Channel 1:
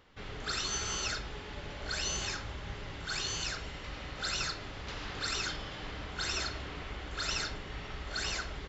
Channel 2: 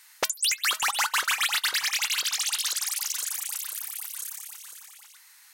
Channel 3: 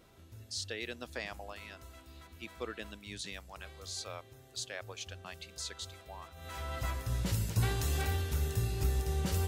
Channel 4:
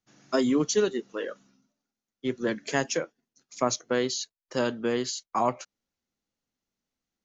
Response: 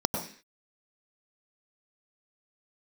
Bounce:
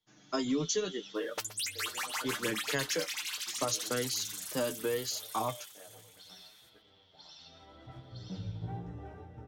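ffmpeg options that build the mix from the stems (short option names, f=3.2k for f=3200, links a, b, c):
-filter_complex "[0:a]bandpass=f=3.4k:t=q:w=8.9:csg=0,volume=-2dB,asplit=2[a][b];[b]volume=-7dB[c];[1:a]adelay=1150,volume=-8dB,asplit=2[d][e];[e]volume=-14.5dB[f];[2:a]lowpass=1.1k,flanger=delay=16:depth=7.7:speed=0.37,aeval=exprs='sgn(val(0))*max(abs(val(0))-0.00126,0)':c=same,adelay=1050,volume=-5dB,asplit=2[g][h];[h]volume=-13.5dB[i];[3:a]volume=0dB,asplit=2[j][k];[k]apad=whole_len=382808[l];[a][l]sidechaingate=range=-33dB:threshold=-43dB:ratio=16:detection=peak[m];[4:a]atrim=start_sample=2205[n];[c][i]amix=inputs=2:normalize=0[o];[o][n]afir=irnorm=-1:irlink=0[p];[f]aecho=0:1:123:1[q];[m][d][g][j][p][q]amix=inputs=6:normalize=0,aecho=1:1:6.6:0.48,flanger=delay=8.6:depth=3.3:regen=33:speed=0.75:shape=triangular,acrossover=split=150|3000[r][s][t];[s]acompressor=threshold=-31dB:ratio=3[u];[r][u][t]amix=inputs=3:normalize=0"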